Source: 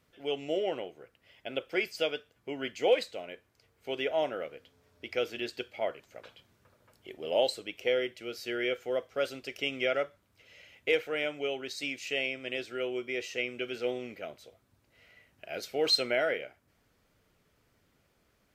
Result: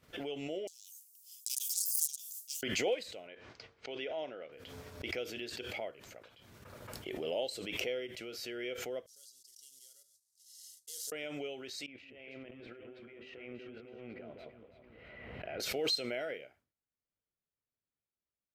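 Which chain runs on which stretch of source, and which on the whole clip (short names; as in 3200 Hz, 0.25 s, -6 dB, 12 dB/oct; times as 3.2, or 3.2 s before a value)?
0.67–2.63 self-modulated delay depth 0.47 ms + inverse Chebyshev high-pass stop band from 1500 Hz, stop band 70 dB + tilt +4.5 dB/oct
3.27–4.52 LPF 5500 Hz 24 dB/oct + low shelf 170 Hz -8.5 dB
9.06–11.12 CVSD 64 kbps + inverse Chebyshev high-pass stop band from 2600 Hz + comb 2.1 ms, depth 35%
11.86–15.6 negative-ratio compressor -45 dBFS + air absorption 450 m + echo with dull and thin repeats by turns 0.165 s, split 1200 Hz, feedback 64%, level -4.5 dB
whole clip: expander -55 dBFS; dynamic EQ 1200 Hz, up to -6 dB, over -42 dBFS, Q 0.79; backwards sustainer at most 28 dB/s; gain -7.5 dB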